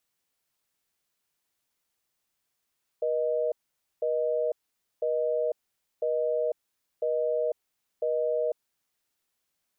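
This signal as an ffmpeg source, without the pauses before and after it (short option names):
-f lavfi -i "aevalsrc='0.0447*(sin(2*PI*480*t)+sin(2*PI*620*t))*clip(min(mod(t,1),0.5-mod(t,1))/0.005,0,1)':d=5.5:s=44100"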